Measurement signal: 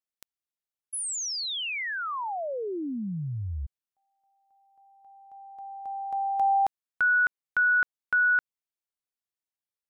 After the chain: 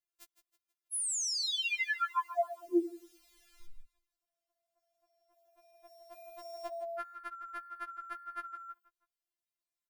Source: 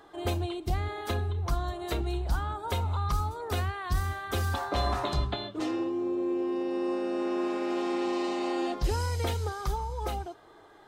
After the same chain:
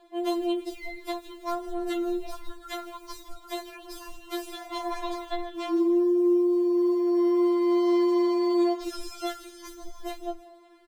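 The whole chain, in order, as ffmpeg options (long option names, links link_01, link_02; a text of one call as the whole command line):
ffmpeg -i in.wav -filter_complex "[0:a]acrusher=bits=8:mode=log:mix=0:aa=0.000001,asplit=5[link_01][link_02][link_03][link_04][link_05];[link_02]adelay=161,afreqshift=-56,volume=-13dB[link_06];[link_03]adelay=322,afreqshift=-112,volume=-20.7dB[link_07];[link_04]adelay=483,afreqshift=-168,volume=-28.5dB[link_08];[link_05]adelay=644,afreqshift=-224,volume=-36.2dB[link_09];[link_01][link_06][link_07][link_08][link_09]amix=inputs=5:normalize=0,afftfilt=real='re*4*eq(mod(b,16),0)':imag='im*4*eq(mod(b,16),0)':win_size=2048:overlap=0.75" out.wav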